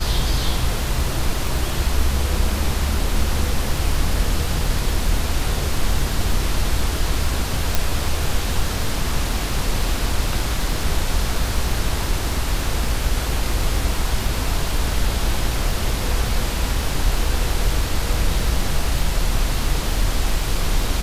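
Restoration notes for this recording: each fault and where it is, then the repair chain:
surface crackle 22 per second −24 dBFS
0:07.75: click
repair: click removal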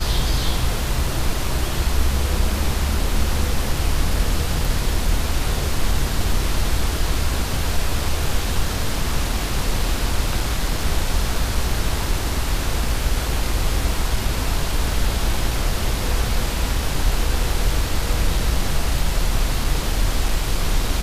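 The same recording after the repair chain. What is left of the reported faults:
none of them is left

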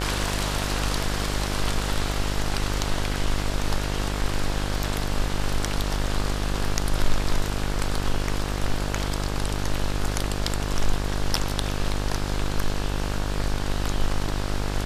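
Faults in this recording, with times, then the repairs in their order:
mains buzz 50 Hz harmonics 35 −28 dBFS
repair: hum removal 50 Hz, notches 35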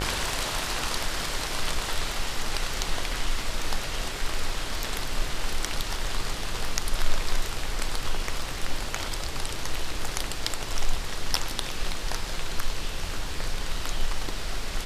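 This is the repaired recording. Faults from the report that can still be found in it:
none of them is left

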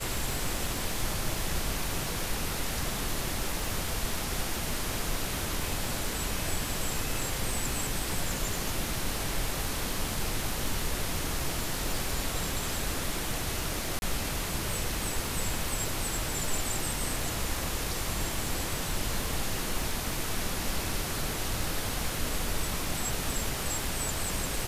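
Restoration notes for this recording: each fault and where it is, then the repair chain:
surface crackle 47 per second −34 dBFS
0:13.99–0:14.02: drop-out 31 ms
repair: click removal
repair the gap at 0:13.99, 31 ms

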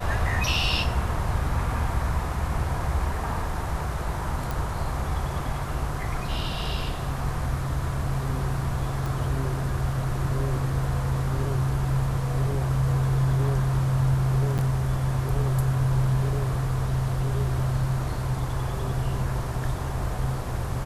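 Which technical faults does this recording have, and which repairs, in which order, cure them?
0:04.51: click
0:09.06: click
0:14.58–0:14.59: drop-out 8.1 ms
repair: click removal
repair the gap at 0:14.58, 8.1 ms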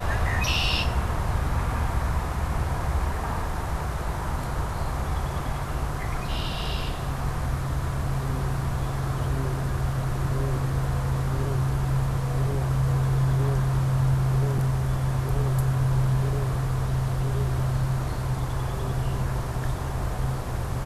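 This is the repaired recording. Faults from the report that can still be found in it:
none of them is left

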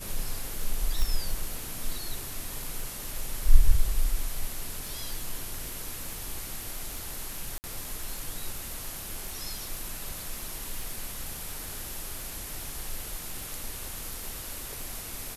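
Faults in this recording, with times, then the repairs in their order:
surface crackle 27 per second −33 dBFS
0:01.02: click
0:07.58–0:07.64: drop-out 59 ms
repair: click removal
repair the gap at 0:07.58, 59 ms

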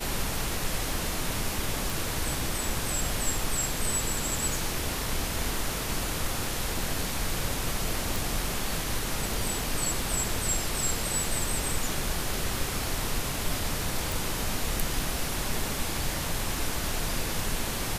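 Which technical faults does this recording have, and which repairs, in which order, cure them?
0:01.90: click
0:08.16: click
0:14.12: click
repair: click removal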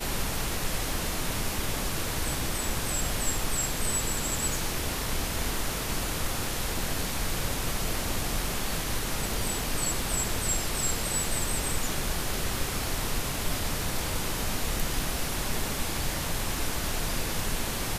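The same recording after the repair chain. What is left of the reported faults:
none of them is left

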